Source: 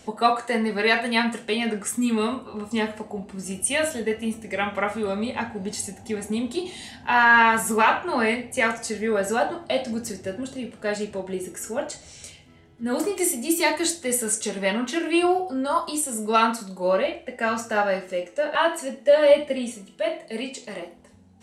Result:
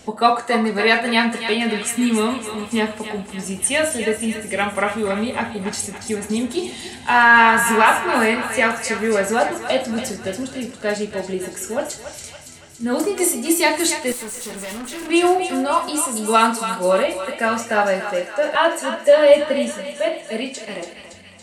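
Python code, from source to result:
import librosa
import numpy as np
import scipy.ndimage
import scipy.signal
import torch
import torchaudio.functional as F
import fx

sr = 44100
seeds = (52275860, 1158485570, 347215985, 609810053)

y = fx.echo_thinned(x, sr, ms=282, feedback_pct=65, hz=800.0, wet_db=-8)
y = fx.tube_stage(y, sr, drive_db=33.0, bias=0.55, at=(14.12, 15.1))
y = y * 10.0 ** (4.5 / 20.0)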